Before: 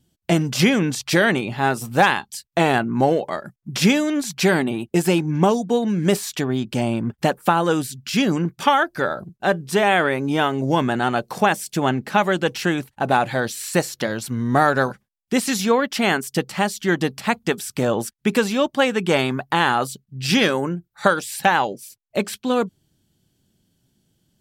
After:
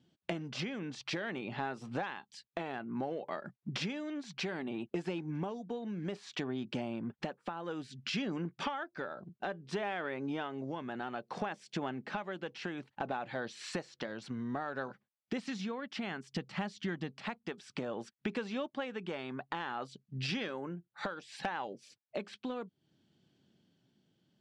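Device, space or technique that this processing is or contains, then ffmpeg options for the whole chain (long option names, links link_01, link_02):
AM radio: -filter_complex "[0:a]lowpass=7500,asplit=3[link_01][link_02][link_03];[link_01]afade=type=out:start_time=15.38:duration=0.02[link_04];[link_02]asubboost=boost=2.5:cutoff=210,afade=type=in:start_time=15.38:duration=0.02,afade=type=out:start_time=17.1:duration=0.02[link_05];[link_03]afade=type=in:start_time=17.1:duration=0.02[link_06];[link_04][link_05][link_06]amix=inputs=3:normalize=0,highpass=160,lowpass=4000,acompressor=threshold=-32dB:ratio=8,asoftclip=type=tanh:threshold=-17.5dB,tremolo=f=0.6:d=0.31,volume=-1.5dB"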